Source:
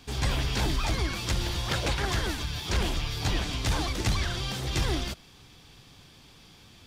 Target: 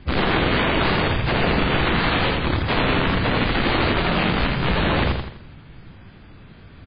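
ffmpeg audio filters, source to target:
ffmpeg -i in.wav -filter_complex "[0:a]lowshelf=frequency=290:gain=12,acrusher=samples=9:mix=1:aa=0.000001,aeval=exprs='(mod(7.5*val(0)+1,2)-1)/7.5':channel_layout=same,asplit=3[link_01][link_02][link_03];[link_02]asetrate=52444,aresample=44100,atempo=0.840896,volume=-8dB[link_04];[link_03]asetrate=58866,aresample=44100,atempo=0.749154,volume=-5dB[link_05];[link_01][link_04][link_05]amix=inputs=3:normalize=0,aecho=1:1:83|166|249|332|415:0.631|0.271|0.117|0.0502|0.0216" -ar 11025 -c:a libmp3lame -b:a 16k out.mp3

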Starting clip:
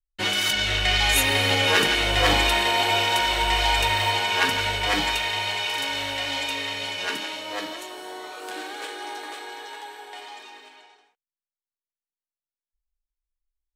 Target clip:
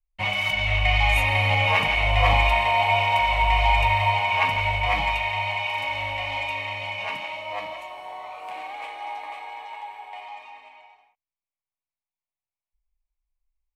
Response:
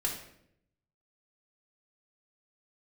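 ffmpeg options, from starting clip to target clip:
-af "firequalizer=gain_entry='entry(100,0);entry(370,-26);entry(610,-3);entry(1100,-2);entry(1500,-22);entry(2200,-1);entry(3500,-18);entry(6700,-23);entry(14000,-21)':delay=0.05:min_phase=1,volume=6dB"

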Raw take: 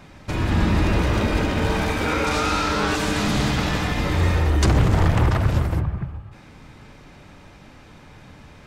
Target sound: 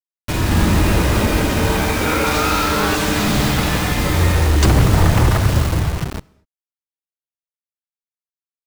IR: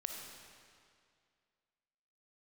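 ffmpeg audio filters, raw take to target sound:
-filter_complex "[0:a]asplit=7[link_01][link_02][link_03][link_04][link_05][link_06][link_07];[link_02]adelay=84,afreqshift=-77,volume=-19dB[link_08];[link_03]adelay=168,afreqshift=-154,volume=-22.7dB[link_09];[link_04]adelay=252,afreqshift=-231,volume=-26.5dB[link_10];[link_05]adelay=336,afreqshift=-308,volume=-30.2dB[link_11];[link_06]adelay=420,afreqshift=-385,volume=-34dB[link_12];[link_07]adelay=504,afreqshift=-462,volume=-37.7dB[link_13];[link_01][link_08][link_09][link_10][link_11][link_12][link_13]amix=inputs=7:normalize=0,acrusher=bits=4:mix=0:aa=0.000001,asplit=2[link_14][link_15];[1:a]atrim=start_sample=2205,afade=type=out:start_time=0.3:duration=0.01,atrim=end_sample=13671[link_16];[link_15][link_16]afir=irnorm=-1:irlink=0,volume=-18.5dB[link_17];[link_14][link_17]amix=inputs=2:normalize=0,volume=3.5dB"

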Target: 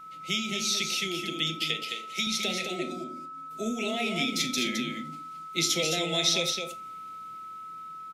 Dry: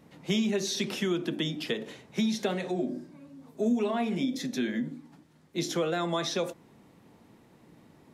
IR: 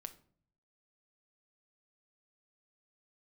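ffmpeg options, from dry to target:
-filter_complex "[0:a]asettb=1/sr,asplit=3[link_01][link_02][link_03];[link_01]atrim=end=1.614[link_04];[link_02]atrim=start=1.61:end=2.27,asetpts=PTS-STARTPTS,afade=type=in:duration=0.004:curve=qsin,afade=type=out:start_time=0.656:duration=0.004:curve=qsin,highpass=frequency=410:poles=1[link_05];[link_03]atrim=start=2.266[link_06];[link_04][link_05]acrossfade=duration=0.004:curve1=hsin:curve2=qsin[link_07];[link_07][link_06]acrossfade=duration=0.004:curve1=qsin:curve2=hsin,asettb=1/sr,asplit=3[link_08][link_09][link_10];[link_08]atrim=end=3.044[link_11];[link_09]atrim=start=3.04:end=3.51,asetpts=PTS-STARTPTS,afade=type=in:duration=0.004:curve=qsin,afade=type=out:start_time=0.466:duration=0.004:curve=qsin,agate=range=-33dB:threshold=-42dB:ratio=3:detection=peak[link_12];[link_10]atrim=start=3.506[link_13];[link_11][link_12]acrossfade=duration=0.004:curve1=hsin:curve2=qsin[link_14];[link_14][link_13]acrossfade=duration=0.004:curve1=qsin:curve2=hsin,firequalizer=gain_entry='entry(710,0);entry(1300,-23);entry(2100,14)':delay=0.05:min_phase=1,dynaudnorm=framelen=380:gausssize=9:maxgain=8dB,aeval=exprs='val(0)+0.02*sin(2*PI*1300*n/s)':channel_layout=same,aecho=1:1:214:0.531[link_15];[1:a]atrim=start_sample=2205,atrim=end_sample=3969[link_16];[link_15][link_16]afir=irnorm=-1:irlink=0,volume=-4.5dB"

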